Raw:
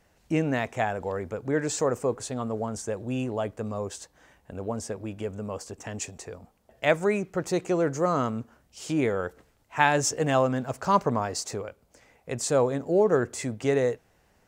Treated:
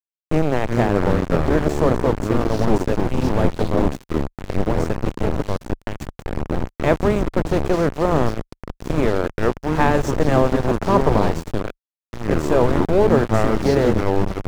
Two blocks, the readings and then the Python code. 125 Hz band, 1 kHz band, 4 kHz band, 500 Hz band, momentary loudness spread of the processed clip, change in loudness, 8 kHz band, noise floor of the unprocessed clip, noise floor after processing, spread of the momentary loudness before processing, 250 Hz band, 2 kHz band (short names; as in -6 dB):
+11.5 dB, +6.0 dB, +3.5 dB, +7.0 dB, 10 LU, +7.5 dB, -5.5 dB, -65 dBFS, under -85 dBFS, 14 LU, +9.5 dB, +4.0 dB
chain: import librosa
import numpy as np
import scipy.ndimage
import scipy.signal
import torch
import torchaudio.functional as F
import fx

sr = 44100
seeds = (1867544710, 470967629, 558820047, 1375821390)

y = fx.bin_compress(x, sr, power=0.6)
y = fx.echo_pitch(y, sr, ms=253, semitones=-5, count=2, db_per_echo=-3.0)
y = fx.low_shelf(y, sr, hz=290.0, db=-6.0)
y = np.where(np.abs(y) >= 10.0 ** (-22.0 / 20.0), y, 0.0)
y = fx.tilt_eq(y, sr, slope=-4.0)
y = y * 10.0 ** (1.0 / 20.0)